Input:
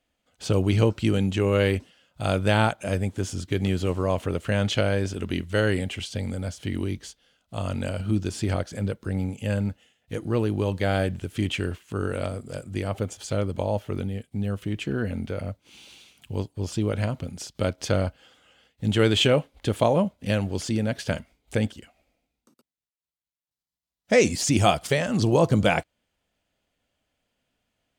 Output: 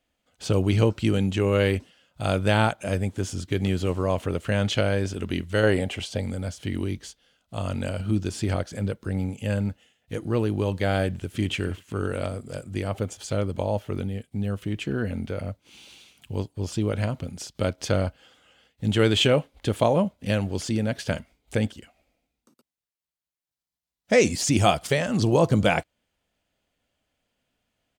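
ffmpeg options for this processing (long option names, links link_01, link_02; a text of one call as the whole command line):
ffmpeg -i in.wav -filter_complex "[0:a]asettb=1/sr,asplit=3[link_01][link_02][link_03];[link_01]atrim=end=5.634[link_04];[link_02]atrim=start=5.63:end=6.21,asetpts=PTS-STARTPTS,afade=type=in:duration=0.004:curve=qsin,afade=type=out:start_time=0.576:duration=0.004:curve=qsin,equalizer=frequency=670:width=0.95:gain=8[link_05];[link_03]atrim=start=6.206[link_06];[link_04][link_05]acrossfade=duration=0.004:curve1=hsin:curve2=qsin[link_07];[link_07][link_06]acrossfade=duration=0.004:curve1=qsin:curve2=hsin,asplit=2[link_08][link_09];[link_09]afade=type=in:start_time=11.07:duration=0.01,afade=type=out:start_time=11.52:duration=0.01,aecho=0:1:270|540|810|1080:0.141254|0.0635642|0.0286039|0.0128717[link_10];[link_08][link_10]amix=inputs=2:normalize=0" out.wav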